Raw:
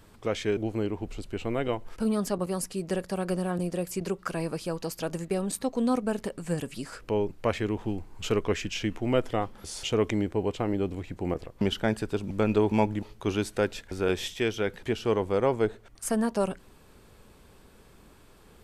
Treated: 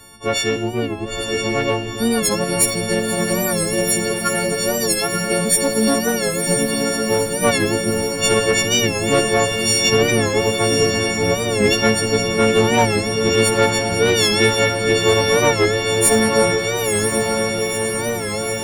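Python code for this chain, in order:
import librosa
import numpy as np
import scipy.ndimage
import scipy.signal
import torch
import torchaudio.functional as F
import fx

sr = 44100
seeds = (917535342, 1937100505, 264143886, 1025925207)

y = fx.freq_snap(x, sr, grid_st=4)
y = fx.tube_stage(y, sr, drive_db=16.0, bias=0.4)
y = fx.echo_diffused(y, sr, ms=974, feedback_pct=73, wet_db=-4.0)
y = fx.rev_schroeder(y, sr, rt60_s=0.69, comb_ms=38, drr_db=10.5)
y = fx.record_warp(y, sr, rpm=45.0, depth_cents=100.0)
y = F.gain(torch.from_numpy(y), 9.0).numpy()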